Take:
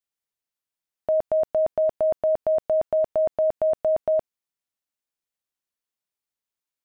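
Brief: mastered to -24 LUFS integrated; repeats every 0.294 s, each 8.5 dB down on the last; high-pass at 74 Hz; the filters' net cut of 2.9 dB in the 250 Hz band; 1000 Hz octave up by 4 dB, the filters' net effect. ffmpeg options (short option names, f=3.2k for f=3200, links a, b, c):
-af "highpass=74,equalizer=f=250:t=o:g=-4.5,equalizer=f=1k:t=o:g=8,aecho=1:1:294|588|882|1176:0.376|0.143|0.0543|0.0206,volume=-3.5dB"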